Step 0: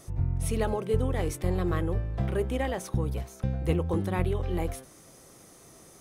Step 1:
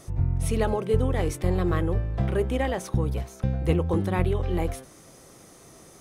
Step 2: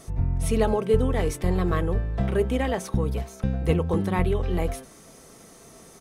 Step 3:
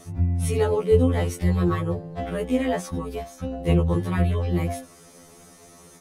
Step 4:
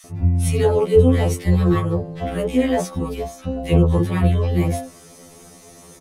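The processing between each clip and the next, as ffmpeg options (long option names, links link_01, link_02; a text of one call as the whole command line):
ffmpeg -i in.wav -af "highshelf=frequency=9600:gain=-5.5,volume=3.5dB" out.wav
ffmpeg -i in.wav -af "aecho=1:1:4.5:0.36,volume=1dB" out.wav
ffmpeg -i in.wav -af "afftfilt=real='re*2*eq(mod(b,4),0)':imag='im*2*eq(mod(b,4),0)':win_size=2048:overlap=0.75,volume=2.5dB" out.wav
ffmpeg -i in.wav -filter_complex "[0:a]acrossover=split=1400[link_01][link_02];[link_01]adelay=40[link_03];[link_03][link_02]amix=inputs=2:normalize=0,volume=5dB" out.wav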